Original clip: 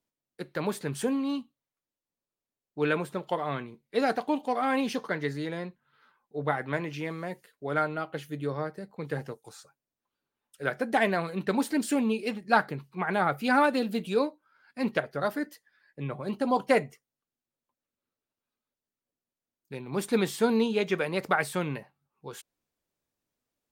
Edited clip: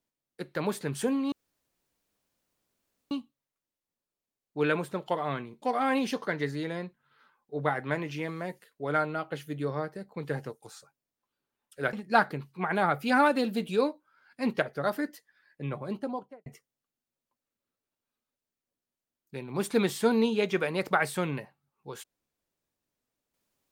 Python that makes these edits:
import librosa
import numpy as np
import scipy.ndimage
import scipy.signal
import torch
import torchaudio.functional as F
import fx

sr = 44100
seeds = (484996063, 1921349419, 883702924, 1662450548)

y = fx.studio_fade_out(x, sr, start_s=16.07, length_s=0.77)
y = fx.edit(y, sr, fx.insert_room_tone(at_s=1.32, length_s=1.79),
    fx.cut(start_s=3.83, length_s=0.61),
    fx.cut(start_s=10.75, length_s=1.56), tone=tone)